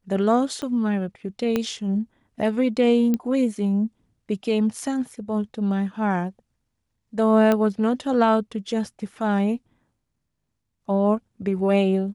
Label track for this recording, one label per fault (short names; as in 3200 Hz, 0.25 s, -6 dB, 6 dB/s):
0.620000	0.620000	pop -18 dBFS
1.560000	1.560000	pop -10 dBFS
3.140000	3.140000	pop -12 dBFS
7.520000	7.520000	pop -9 dBFS